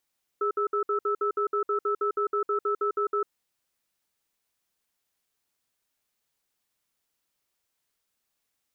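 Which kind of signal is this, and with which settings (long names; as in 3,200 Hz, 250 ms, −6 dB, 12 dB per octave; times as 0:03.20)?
tone pair in a cadence 410 Hz, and 1,310 Hz, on 0.10 s, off 0.06 s, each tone −26 dBFS 2.82 s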